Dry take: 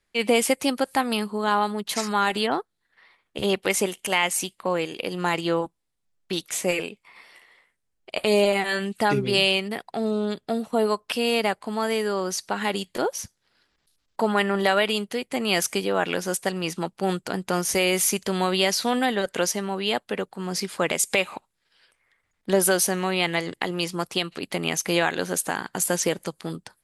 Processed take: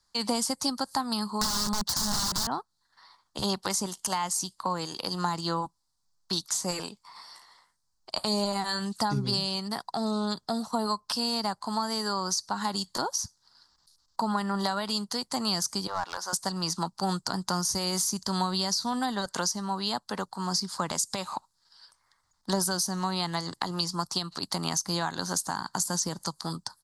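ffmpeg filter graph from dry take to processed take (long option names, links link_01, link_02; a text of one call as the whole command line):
ffmpeg -i in.wav -filter_complex "[0:a]asettb=1/sr,asplit=3[link_01][link_02][link_03];[link_01]atrim=end=1.414[link_04];[link_02]atrim=start=1.41:end=2.47,asetpts=PTS-STARTPTS,afade=type=in:duration=0.004:curve=qsin,afade=type=out:start_time=1.056:duration=0.004:curve=qsin,equalizer=frequency=560:width_type=o:width=0.58:gain=10.5,acontrast=31,aeval=exprs='(mod(7.94*val(0)+1,2)-1)/7.94':channel_layout=same[link_05];[link_03]atrim=start=2.466[link_06];[link_04][link_05]acrossfade=duration=0.004:curve1=hsin:curve2=qsin[link_07];[link_07][link_06]acrossfade=duration=0.004:curve1=qsin:curve2=hsin,asettb=1/sr,asplit=3[link_08][link_09][link_10];[link_08]atrim=end=15.874[link_11];[link_09]atrim=start=15.87:end=16.33,asetpts=PTS-STARTPTS,afade=type=in:duration=0.004:curve=qsin,afade=type=out:start_time=0.456:duration=0.004:curve=qsin,highpass=720,highshelf=frequency=2500:gain=-11.5,aeval=exprs='clip(val(0),-1,0.0447)':channel_layout=same[link_12];[link_10]atrim=start=16.326[link_13];[link_11][link_12]acrossfade=duration=0.004:curve1=hsin:curve2=qsin[link_14];[link_14][link_13]acrossfade=duration=0.004:curve1=qsin:curve2=hsin,firequalizer=gain_entry='entry(130,0);entry(450,-10);entry(960,9);entry(2400,-15);entry(4500,13);entry(11000,1)':delay=0.05:min_phase=1,acrossover=split=300[link_15][link_16];[link_16]acompressor=threshold=-27dB:ratio=6[link_17];[link_15][link_17]amix=inputs=2:normalize=0" out.wav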